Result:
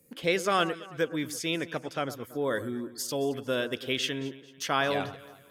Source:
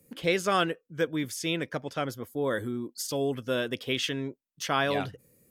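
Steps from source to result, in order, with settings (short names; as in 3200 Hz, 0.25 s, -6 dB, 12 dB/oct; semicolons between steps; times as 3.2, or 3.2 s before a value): low shelf 160 Hz -5.5 dB; echo with dull and thin repeats by turns 0.111 s, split 1500 Hz, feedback 61%, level -13.5 dB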